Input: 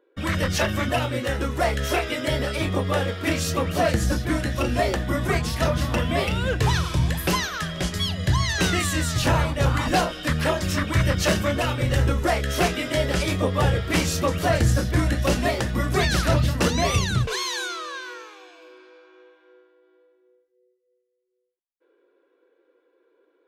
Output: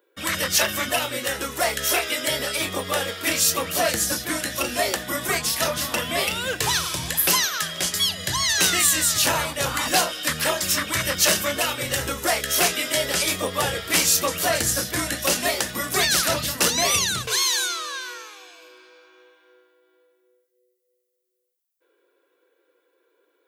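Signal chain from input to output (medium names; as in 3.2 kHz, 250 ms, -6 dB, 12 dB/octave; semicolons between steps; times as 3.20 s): RIAA curve recording; hum notches 60/120 Hz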